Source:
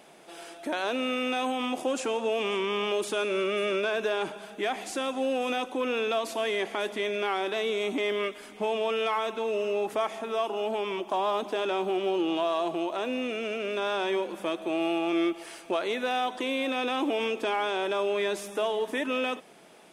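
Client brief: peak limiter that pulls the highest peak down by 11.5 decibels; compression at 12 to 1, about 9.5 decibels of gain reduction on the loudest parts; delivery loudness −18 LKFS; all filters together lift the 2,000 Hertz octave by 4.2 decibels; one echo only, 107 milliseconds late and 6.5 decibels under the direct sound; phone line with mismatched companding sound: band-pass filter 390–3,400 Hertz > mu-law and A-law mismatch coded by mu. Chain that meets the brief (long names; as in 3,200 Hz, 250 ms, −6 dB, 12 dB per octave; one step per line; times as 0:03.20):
parametric band 2,000 Hz +6.5 dB
downward compressor 12 to 1, threshold −32 dBFS
brickwall limiter −31 dBFS
band-pass filter 390–3,400 Hz
single-tap delay 107 ms −6.5 dB
mu-law and A-law mismatch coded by mu
level +19.5 dB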